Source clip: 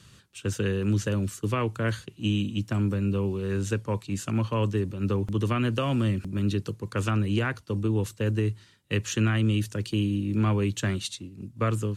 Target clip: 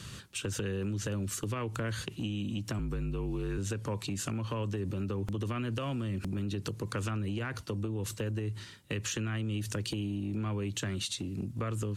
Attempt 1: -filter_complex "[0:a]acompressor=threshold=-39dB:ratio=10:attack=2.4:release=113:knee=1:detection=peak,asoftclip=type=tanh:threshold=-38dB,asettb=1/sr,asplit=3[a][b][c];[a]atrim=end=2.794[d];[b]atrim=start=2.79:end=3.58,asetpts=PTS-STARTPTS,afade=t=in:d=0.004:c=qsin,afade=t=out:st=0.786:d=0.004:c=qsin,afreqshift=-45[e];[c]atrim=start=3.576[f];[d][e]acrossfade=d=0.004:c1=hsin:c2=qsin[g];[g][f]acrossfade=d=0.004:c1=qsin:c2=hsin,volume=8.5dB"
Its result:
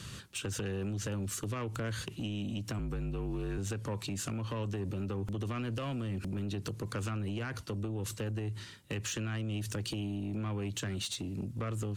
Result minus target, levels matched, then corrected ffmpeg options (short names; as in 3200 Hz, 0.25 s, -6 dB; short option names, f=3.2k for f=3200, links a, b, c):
soft clip: distortion +19 dB
-filter_complex "[0:a]acompressor=threshold=-39dB:ratio=10:attack=2.4:release=113:knee=1:detection=peak,asoftclip=type=tanh:threshold=-26.5dB,asettb=1/sr,asplit=3[a][b][c];[a]atrim=end=2.794[d];[b]atrim=start=2.79:end=3.58,asetpts=PTS-STARTPTS,afade=t=in:d=0.004:c=qsin,afade=t=out:st=0.786:d=0.004:c=qsin,afreqshift=-45[e];[c]atrim=start=3.576[f];[d][e]acrossfade=d=0.004:c1=hsin:c2=qsin[g];[g][f]acrossfade=d=0.004:c1=qsin:c2=hsin,volume=8.5dB"